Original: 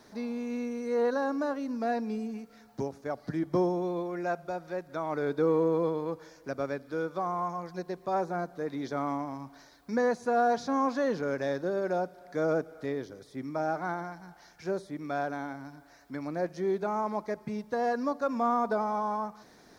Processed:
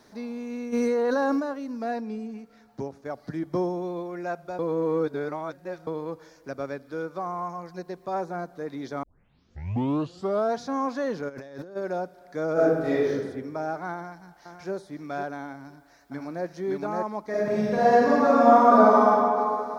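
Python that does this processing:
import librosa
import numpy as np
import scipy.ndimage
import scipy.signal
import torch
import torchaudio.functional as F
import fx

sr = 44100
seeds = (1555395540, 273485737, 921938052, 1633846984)

y = fx.env_flatten(x, sr, amount_pct=100, at=(0.72, 1.39), fade=0.02)
y = fx.high_shelf(y, sr, hz=5300.0, db=-7.0, at=(2.0, 3.05))
y = fx.notch(y, sr, hz=3400.0, q=12.0, at=(7.02, 7.88))
y = fx.over_compress(y, sr, threshold_db=-41.0, ratio=-1.0, at=(11.28, 11.75), fade=0.02)
y = fx.reverb_throw(y, sr, start_s=12.53, length_s=0.62, rt60_s=1.2, drr_db=-10.0)
y = fx.echo_throw(y, sr, start_s=13.94, length_s=0.78, ms=510, feedback_pct=10, wet_db=-8.0)
y = fx.echo_throw(y, sr, start_s=15.54, length_s=0.91, ms=570, feedback_pct=10, wet_db=-1.0)
y = fx.reverb_throw(y, sr, start_s=17.29, length_s=1.79, rt60_s=2.7, drr_db=-11.0)
y = fx.edit(y, sr, fx.reverse_span(start_s=4.59, length_s=1.28),
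    fx.tape_start(start_s=9.03, length_s=1.53), tone=tone)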